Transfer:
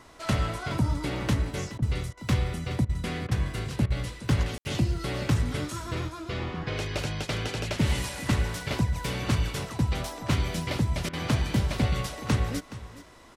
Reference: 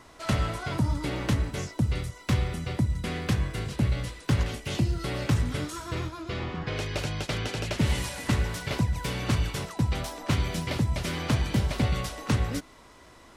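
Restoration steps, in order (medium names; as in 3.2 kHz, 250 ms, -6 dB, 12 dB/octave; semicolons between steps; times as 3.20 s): room tone fill 4.58–4.65 s; interpolate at 1.78/2.13/2.85/3.27/3.86/11.09 s, 42 ms; inverse comb 421 ms -15.5 dB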